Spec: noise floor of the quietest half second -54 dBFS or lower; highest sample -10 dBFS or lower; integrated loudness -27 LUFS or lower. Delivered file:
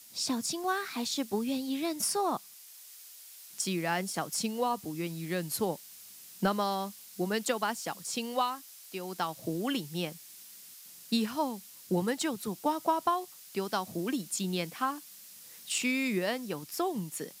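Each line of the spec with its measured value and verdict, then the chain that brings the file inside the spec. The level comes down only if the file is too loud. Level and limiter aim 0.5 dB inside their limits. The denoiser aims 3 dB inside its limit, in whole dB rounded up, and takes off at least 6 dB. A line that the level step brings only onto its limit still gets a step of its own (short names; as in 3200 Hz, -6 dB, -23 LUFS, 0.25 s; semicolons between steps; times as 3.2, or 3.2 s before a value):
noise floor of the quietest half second -52 dBFS: fail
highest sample -15.0 dBFS: OK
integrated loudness -33.0 LUFS: OK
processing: denoiser 6 dB, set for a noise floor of -52 dBFS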